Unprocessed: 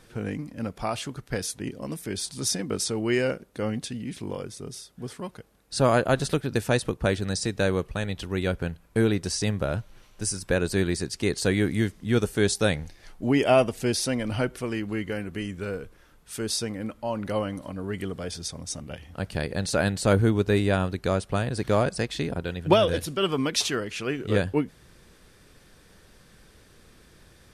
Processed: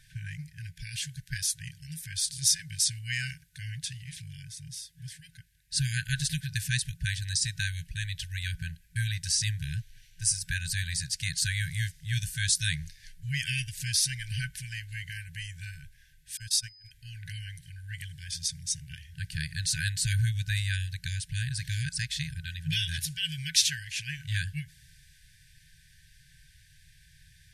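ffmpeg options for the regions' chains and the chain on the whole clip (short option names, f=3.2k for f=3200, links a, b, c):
-filter_complex "[0:a]asettb=1/sr,asplit=3[a][b][c];[a]atrim=end=16.374[d];[b]atrim=start=16.37:end=16.91,asetpts=PTS-STARTPTS,afade=t=in:d=0.004:c=qsin,afade=t=out:st=0.536:d=0.004:c=qsin,agate=range=-31dB:threshold=-30dB:ratio=16:release=100:detection=peak,equalizer=f=2k:w=4.7:g=-2.5,aeval=exprs='val(0)+0.00178*sin(2*PI*5000*n/s)':c=same[e];[c]atrim=start=16.906[f];[d][e]acrossfade=d=0.004:c1=hsin:c2=qsin[g];[g][f]acrossfade=d=0.004:c1=qsin:c2=hsin,afftfilt=real='re*(1-between(b*sr/4096,170,1500))':imag='im*(1-between(b*sr/4096,170,1500))':win_size=4096:overlap=0.75,adynamicequalizer=threshold=0.00562:dfrequency=3400:dqfactor=0.7:tfrequency=3400:tqfactor=0.7:attack=5:release=100:ratio=0.375:range=3:mode=boostabove:tftype=highshelf,volume=-2dB"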